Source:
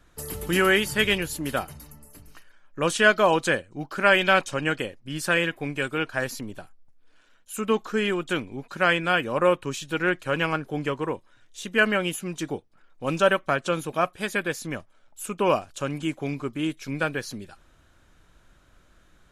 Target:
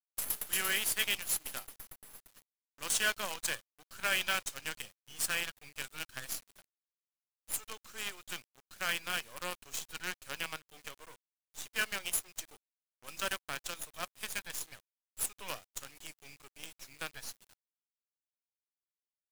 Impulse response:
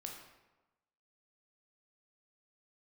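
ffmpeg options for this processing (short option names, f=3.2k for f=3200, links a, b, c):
-af "aderivative,acrusher=bits=6:dc=4:mix=0:aa=0.000001"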